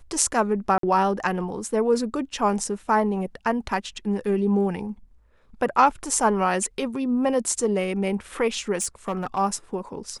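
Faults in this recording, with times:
0.78–0.83 gap 53 ms
8.81–9.39 clipped -21 dBFS

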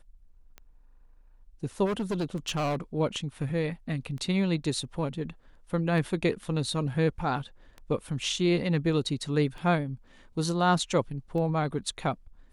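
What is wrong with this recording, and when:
tick 33 1/3 rpm -28 dBFS
1.85–2.76 clipped -25.5 dBFS

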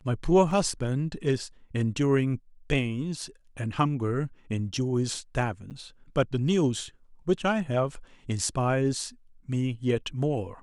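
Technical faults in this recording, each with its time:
0.51 gap 2.1 ms
5.7–5.71 gap 8.6 ms

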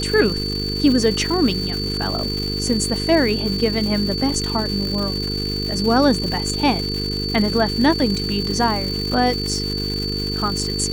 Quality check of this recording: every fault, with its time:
buzz 50 Hz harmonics 9 -26 dBFS
crackle 400/s -25 dBFS
tone 4500 Hz -25 dBFS

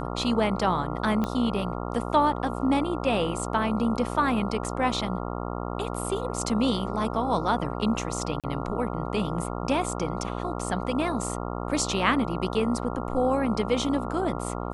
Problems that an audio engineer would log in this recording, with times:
buzz 60 Hz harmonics 23 -32 dBFS
1.24 pop -15 dBFS
8.4–8.44 gap 37 ms

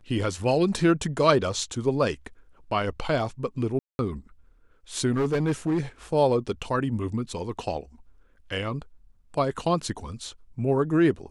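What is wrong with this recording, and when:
3.79–3.99 gap 0.201 s
5.11–5.8 clipped -20 dBFS

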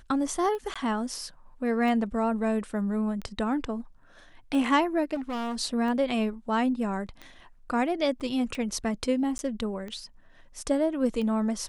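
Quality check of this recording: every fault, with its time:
tick 45 rpm -25 dBFS
0.74–0.76 gap 16 ms
5.14–5.56 clipped -29.5 dBFS
8.2–8.21 gap 6.8 ms
9.38–9.39 gap

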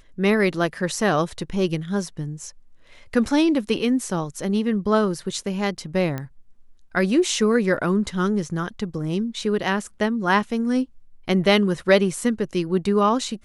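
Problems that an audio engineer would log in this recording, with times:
6.18 pop -16 dBFS

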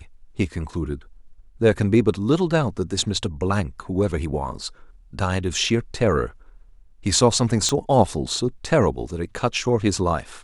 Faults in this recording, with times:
7.69 pop -9 dBFS

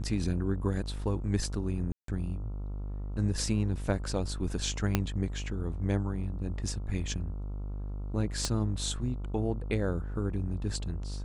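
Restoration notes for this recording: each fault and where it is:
buzz 50 Hz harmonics 28 -36 dBFS
1.92–2.08 gap 0.163 s
4.95 pop -10 dBFS
8.45 pop -15 dBFS

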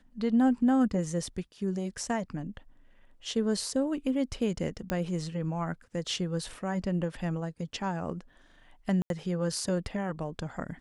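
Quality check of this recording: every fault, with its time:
4.9 pop -16 dBFS
9.02–9.1 gap 82 ms

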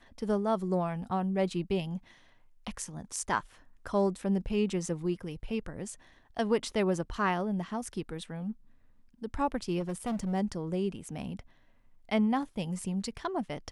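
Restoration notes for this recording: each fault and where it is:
9.79–10.34 clipped -29 dBFS

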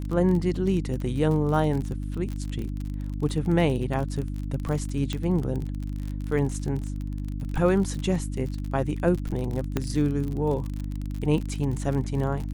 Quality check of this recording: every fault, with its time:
crackle 39/s -30 dBFS
hum 50 Hz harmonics 6 -31 dBFS
5.13 pop -16 dBFS
9.77 pop -12 dBFS

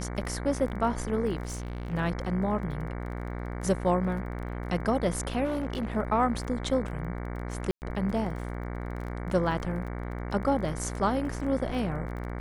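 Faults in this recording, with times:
buzz 60 Hz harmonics 38 -35 dBFS
crackle 21/s -38 dBFS
1.45–1.94 clipped -31 dBFS
5.44–5.97 clipped -26.5 dBFS
7.71–7.82 gap 0.109 s

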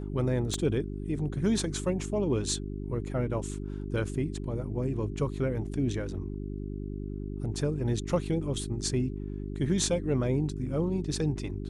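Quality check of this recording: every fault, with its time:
hum 50 Hz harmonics 8 -36 dBFS
0.54 pop -19 dBFS

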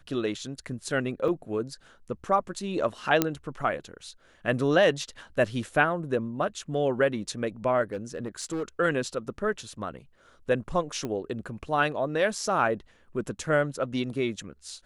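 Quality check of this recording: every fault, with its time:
1.28 gap 3.4 ms
3.22 pop -7 dBFS
7.92–8.64 clipped -27 dBFS
11.05 pop -20 dBFS

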